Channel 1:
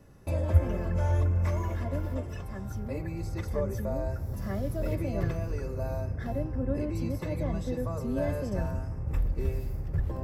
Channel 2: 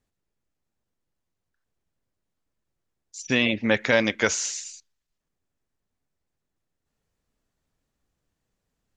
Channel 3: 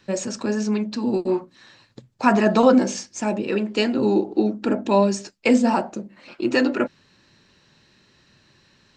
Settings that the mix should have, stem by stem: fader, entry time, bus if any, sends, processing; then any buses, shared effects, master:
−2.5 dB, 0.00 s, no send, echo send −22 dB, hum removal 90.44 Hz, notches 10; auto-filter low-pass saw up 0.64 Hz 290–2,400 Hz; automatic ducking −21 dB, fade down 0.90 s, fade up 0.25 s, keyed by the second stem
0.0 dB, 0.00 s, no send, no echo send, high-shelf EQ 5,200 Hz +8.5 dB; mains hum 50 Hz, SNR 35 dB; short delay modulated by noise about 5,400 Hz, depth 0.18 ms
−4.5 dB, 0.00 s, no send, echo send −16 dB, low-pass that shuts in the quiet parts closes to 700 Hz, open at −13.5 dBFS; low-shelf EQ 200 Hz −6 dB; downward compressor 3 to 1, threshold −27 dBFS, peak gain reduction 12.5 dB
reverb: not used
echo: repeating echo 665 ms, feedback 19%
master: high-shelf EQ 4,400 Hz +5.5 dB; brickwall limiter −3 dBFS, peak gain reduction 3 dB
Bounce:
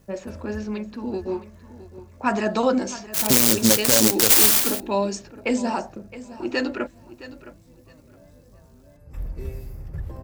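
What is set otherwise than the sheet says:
stem 1: missing auto-filter low-pass saw up 0.64 Hz 290–2,400 Hz
stem 2 0.0 dB → +7.0 dB
stem 3: missing downward compressor 3 to 1, threshold −27 dBFS, peak gain reduction 12.5 dB

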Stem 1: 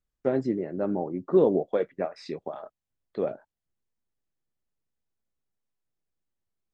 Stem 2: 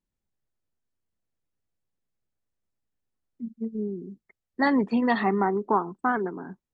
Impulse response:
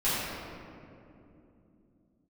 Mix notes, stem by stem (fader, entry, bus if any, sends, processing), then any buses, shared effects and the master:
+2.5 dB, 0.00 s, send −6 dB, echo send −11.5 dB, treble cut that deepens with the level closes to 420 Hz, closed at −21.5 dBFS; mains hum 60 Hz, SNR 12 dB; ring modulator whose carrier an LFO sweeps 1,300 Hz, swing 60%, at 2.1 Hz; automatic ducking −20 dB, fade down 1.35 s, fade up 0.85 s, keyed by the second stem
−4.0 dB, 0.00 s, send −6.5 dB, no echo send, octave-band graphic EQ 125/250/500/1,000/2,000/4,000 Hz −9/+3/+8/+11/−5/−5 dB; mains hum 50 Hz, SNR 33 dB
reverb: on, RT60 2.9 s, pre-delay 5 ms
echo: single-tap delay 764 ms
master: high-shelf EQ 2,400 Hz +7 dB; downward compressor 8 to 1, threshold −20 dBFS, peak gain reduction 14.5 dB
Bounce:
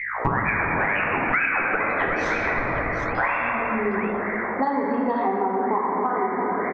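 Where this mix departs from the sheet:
stem 1 +2.5 dB → +13.0 dB
master: missing high-shelf EQ 2,400 Hz +7 dB

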